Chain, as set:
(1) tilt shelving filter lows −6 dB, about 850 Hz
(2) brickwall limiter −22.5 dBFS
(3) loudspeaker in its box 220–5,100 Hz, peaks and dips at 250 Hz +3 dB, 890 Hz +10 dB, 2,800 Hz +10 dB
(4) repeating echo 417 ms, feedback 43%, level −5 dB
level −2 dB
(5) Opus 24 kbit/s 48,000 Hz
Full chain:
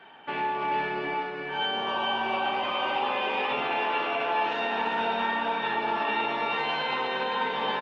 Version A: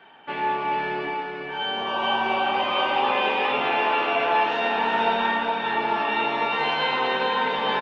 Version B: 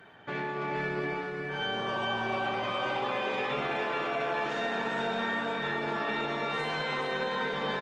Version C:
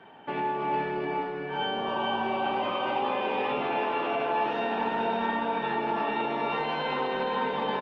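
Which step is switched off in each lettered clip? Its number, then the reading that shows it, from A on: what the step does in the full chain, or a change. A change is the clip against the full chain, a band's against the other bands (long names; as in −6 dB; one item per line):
2, average gain reduction 4.0 dB
3, 125 Hz band +9.0 dB
1, 4 kHz band −7.5 dB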